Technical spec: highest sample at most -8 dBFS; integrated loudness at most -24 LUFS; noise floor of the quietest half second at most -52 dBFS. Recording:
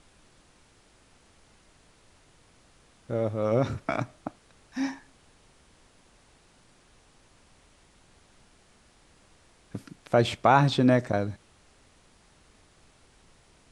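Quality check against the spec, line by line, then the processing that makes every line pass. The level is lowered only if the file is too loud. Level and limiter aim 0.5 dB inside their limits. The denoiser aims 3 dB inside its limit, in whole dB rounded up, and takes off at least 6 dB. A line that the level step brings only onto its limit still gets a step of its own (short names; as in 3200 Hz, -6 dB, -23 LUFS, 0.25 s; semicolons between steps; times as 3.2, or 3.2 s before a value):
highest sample -6.0 dBFS: fail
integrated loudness -26.0 LUFS: OK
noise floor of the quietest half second -60 dBFS: OK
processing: limiter -8.5 dBFS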